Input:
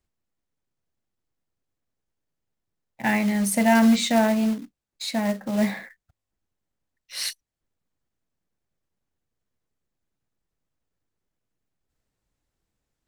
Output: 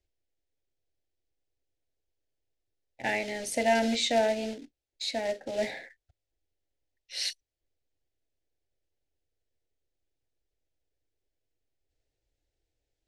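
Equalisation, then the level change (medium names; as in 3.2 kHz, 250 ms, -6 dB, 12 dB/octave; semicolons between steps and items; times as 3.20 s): low-pass 5.9 kHz 12 dB/octave; static phaser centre 470 Hz, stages 4; 0.0 dB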